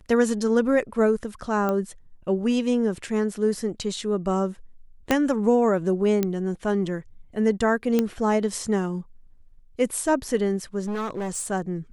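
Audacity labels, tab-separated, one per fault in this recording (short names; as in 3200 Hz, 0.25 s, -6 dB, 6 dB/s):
1.690000	1.690000	pop -14 dBFS
5.110000	5.110000	pop -6 dBFS
6.230000	6.230000	pop -10 dBFS
7.990000	7.990000	pop -9 dBFS
10.830000	11.470000	clipped -25.5 dBFS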